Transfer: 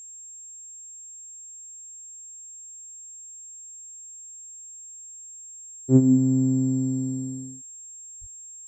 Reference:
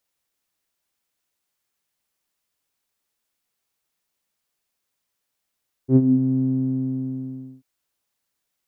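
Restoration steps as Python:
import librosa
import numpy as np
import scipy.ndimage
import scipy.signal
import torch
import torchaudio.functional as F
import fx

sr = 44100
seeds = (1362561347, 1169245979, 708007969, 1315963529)

y = fx.notch(x, sr, hz=7500.0, q=30.0)
y = fx.highpass(y, sr, hz=140.0, slope=24, at=(8.2, 8.32), fade=0.02)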